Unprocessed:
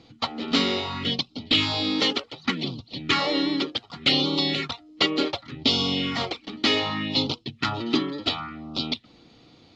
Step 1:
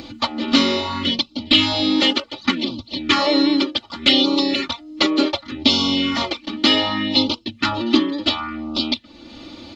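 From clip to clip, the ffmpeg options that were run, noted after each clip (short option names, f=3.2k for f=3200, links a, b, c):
-filter_complex "[0:a]aecho=1:1:3.4:1,asplit=2[a][b];[b]acompressor=mode=upward:threshold=-21dB:ratio=2.5,volume=-1.5dB[c];[a][c]amix=inputs=2:normalize=0,volume=-2.5dB"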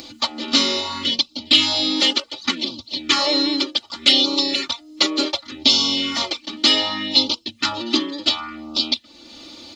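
-af "bass=f=250:g=-7,treble=f=4k:g=13,volume=-3.5dB"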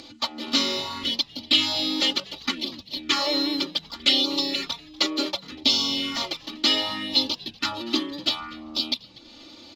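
-filter_complex "[0:a]adynamicsmooth=sensitivity=5.5:basefreq=6.7k,asplit=4[a][b][c][d];[b]adelay=242,afreqshift=-120,volume=-22.5dB[e];[c]adelay=484,afreqshift=-240,volume=-30.7dB[f];[d]adelay=726,afreqshift=-360,volume=-38.9dB[g];[a][e][f][g]amix=inputs=4:normalize=0,volume=-5dB"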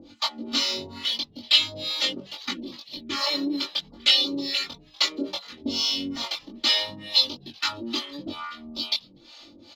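-filter_complex "[0:a]acrossover=split=580[a][b];[a]aeval=exprs='val(0)*(1-1/2+1/2*cos(2*PI*2.3*n/s))':c=same[c];[b]aeval=exprs='val(0)*(1-1/2-1/2*cos(2*PI*2.3*n/s))':c=same[d];[c][d]amix=inputs=2:normalize=0,asplit=2[e][f];[f]adelay=21,volume=-2.5dB[g];[e][g]amix=inputs=2:normalize=0"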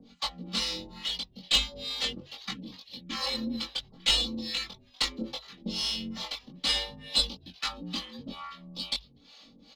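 -af "aeval=exprs='0.631*(cos(1*acos(clip(val(0)/0.631,-1,1)))-cos(1*PI/2))+0.0891*(cos(4*acos(clip(val(0)/0.631,-1,1)))-cos(4*PI/2))':c=same,afreqshift=-54,volume=-6dB"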